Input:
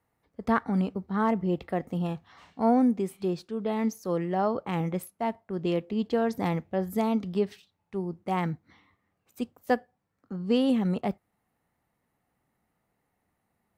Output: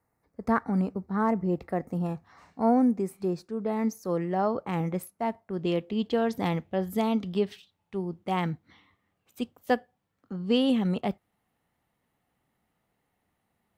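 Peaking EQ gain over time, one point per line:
peaking EQ 3.2 kHz 0.56 oct
3.59 s -13.5 dB
4.30 s -4 dB
5.24 s -4 dB
5.95 s +6 dB

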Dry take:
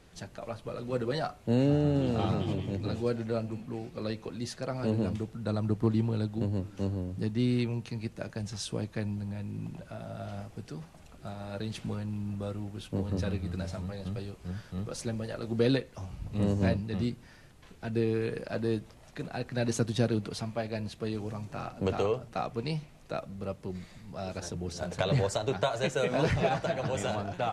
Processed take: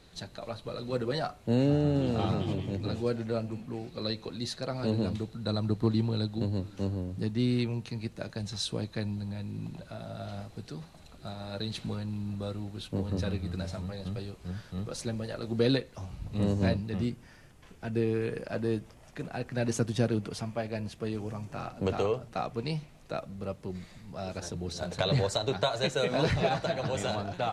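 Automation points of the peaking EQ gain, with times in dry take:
peaking EQ 4 kHz 0.21 oct
+13.5 dB
from 0.96 s +3.5 dB
from 3.87 s +13.5 dB
from 6.75 s +5.5 dB
from 8.20 s +12 dB
from 12.88 s +5.5 dB
from 16.89 s -5.5 dB
from 21.53 s +1.5 dB
from 24.53 s +9.5 dB

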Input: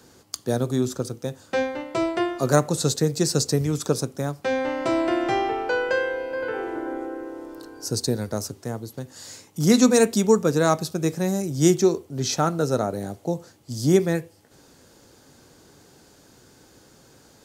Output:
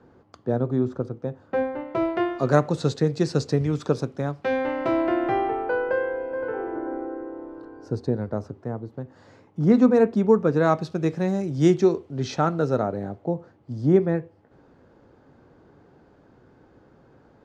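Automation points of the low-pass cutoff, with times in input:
1.67 s 1.3 kHz
2.40 s 2.9 kHz
4.55 s 2.9 kHz
5.85 s 1.3 kHz
10.12 s 1.3 kHz
10.90 s 2.9 kHz
12.62 s 2.9 kHz
13.30 s 1.4 kHz

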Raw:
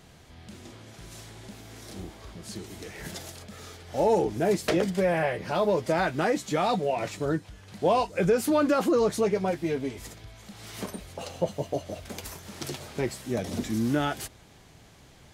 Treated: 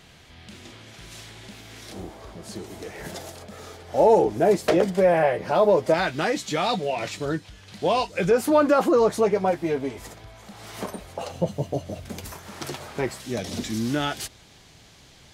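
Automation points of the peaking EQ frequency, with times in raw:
peaking EQ +7.5 dB 2 oct
2.8 kHz
from 1.92 s 640 Hz
from 5.94 s 3.7 kHz
from 8.31 s 820 Hz
from 11.32 s 140 Hz
from 12.32 s 1.1 kHz
from 13.20 s 4.3 kHz

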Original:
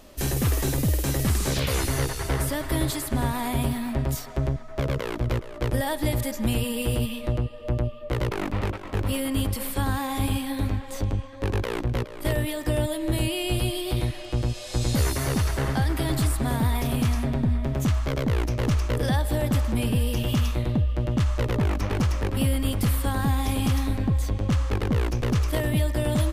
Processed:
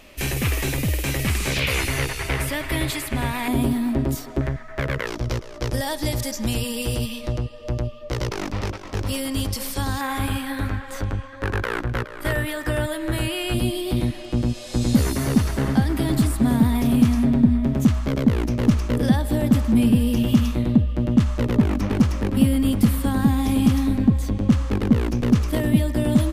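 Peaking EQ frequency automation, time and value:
peaking EQ +12.5 dB 0.82 oct
2.4 kHz
from 3.48 s 300 Hz
from 4.41 s 1.8 kHz
from 5.07 s 5.6 kHz
from 10.01 s 1.5 kHz
from 13.54 s 230 Hz

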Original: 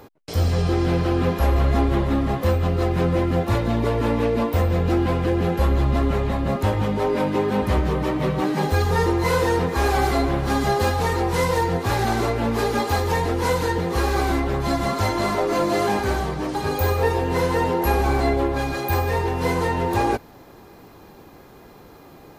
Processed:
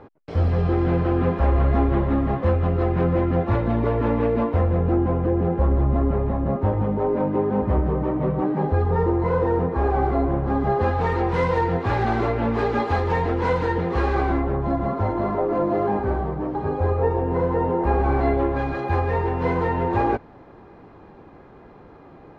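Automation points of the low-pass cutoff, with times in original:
4.40 s 1.8 kHz
5.02 s 1 kHz
10.60 s 1 kHz
11.13 s 2.3 kHz
14.10 s 2.3 kHz
14.65 s 1 kHz
17.64 s 1 kHz
18.33 s 1.9 kHz

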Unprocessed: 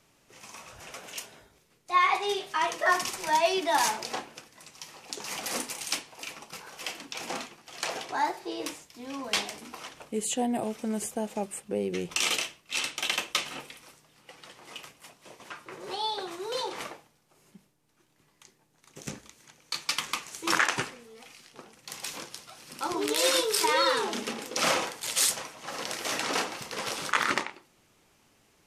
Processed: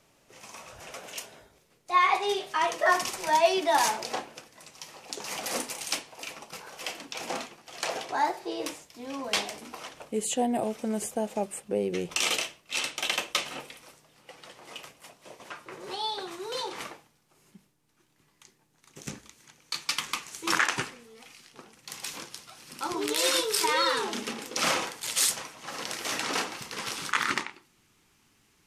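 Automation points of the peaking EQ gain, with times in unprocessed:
peaking EQ 590 Hz 0.87 oct
15.56 s +4 dB
15.97 s -3.5 dB
26.48 s -3.5 dB
26.93 s -10 dB

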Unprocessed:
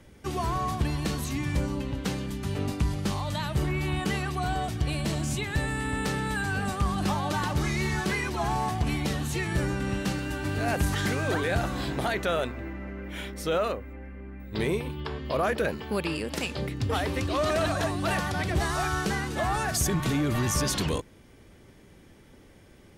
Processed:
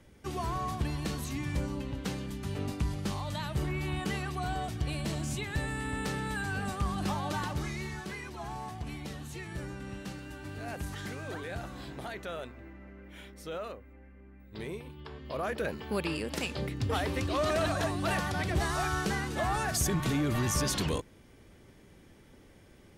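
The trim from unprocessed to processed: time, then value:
7.38 s -5 dB
8.03 s -12 dB
14.96 s -12 dB
15.96 s -3 dB

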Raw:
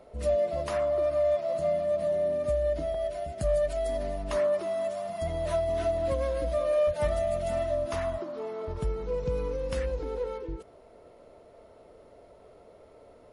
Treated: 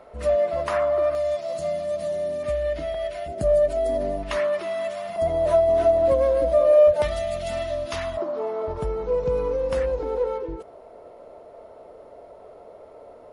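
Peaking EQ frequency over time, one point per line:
peaking EQ +10.5 dB 2.2 oct
1.3 kHz
from 1.15 s 6.5 kHz
from 2.43 s 2.3 kHz
from 3.28 s 370 Hz
from 4.23 s 2.3 kHz
from 5.16 s 570 Hz
from 7.02 s 3.7 kHz
from 8.17 s 730 Hz

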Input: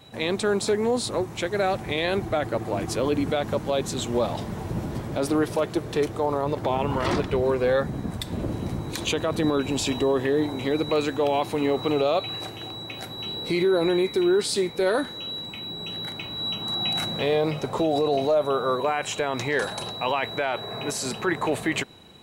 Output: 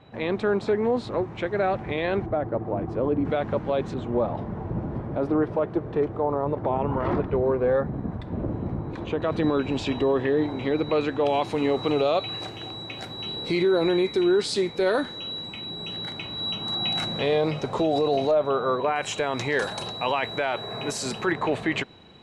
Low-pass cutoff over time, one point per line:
2.2 kHz
from 2.26 s 1 kHz
from 3.25 s 2.2 kHz
from 3.94 s 1.3 kHz
from 9.22 s 3.1 kHz
from 11.26 s 6.5 kHz
from 18.31 s 3.2 kHz
from 18.96 s 8.3 kHz
from 21.32 s 4.2 kHz

